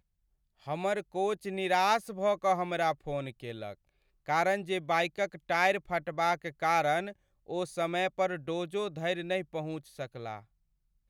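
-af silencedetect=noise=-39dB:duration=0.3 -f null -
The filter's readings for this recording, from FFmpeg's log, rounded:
silence_start: 0.00
silence_end: 0.68 | silence_duration: 0.68
silence_start: 3.72
silence_end: 4.28 | silence_duration: 0.56
silence_start: 7.11
silence_end: 7.49 | silence_duration: 0.38
silence_start: 10.39
silence_end: 11.10 | silence_duration: 0.71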